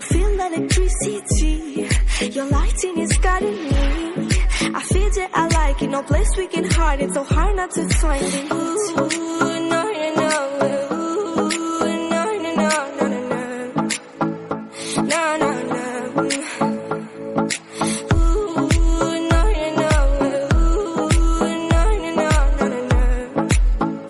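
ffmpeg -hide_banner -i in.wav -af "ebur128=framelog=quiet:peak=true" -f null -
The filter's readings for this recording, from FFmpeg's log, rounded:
Integrated loudness:
  I:         -20.2 LUFS
  Threshold: -30.2 LUFS
Loudness range:
  LRA:         3.1 LU
  Threshold: -40.3 LUFS
  LRA low:   -21.9 LUFS
  LRA high:  -18.8 LUFS
True peak:
  Peak:       -7.2 dBFS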